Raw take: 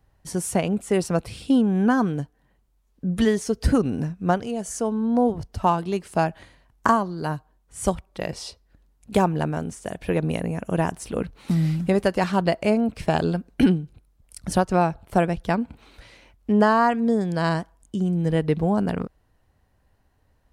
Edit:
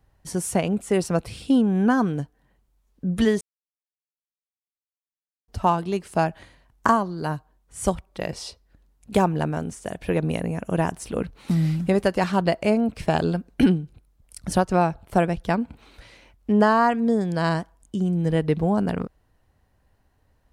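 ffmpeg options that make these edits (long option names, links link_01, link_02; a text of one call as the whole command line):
ffmpeg -i in.wav -filter_complex "[0:a]asplit=3[link_01][link_02][link_03];[link_01]atrim=end=3.41,asetpts=PTS-STARTPTS,afade=type=out:start_time=3.406:duration=0.004:curve=hsin[link_04];[link_02]atrim=start=3.41:end=5.48,asetpts=PTS-STARTPTS,volume=0[link_05];[link_03]atrim=start=5.48,asetpts=PTS-STARTPTS,afade=type=in:duration=0.004:curve=hsin[link_06];[link_04][link_05][link_06]concat=n=3:v=0:a=1" out.wav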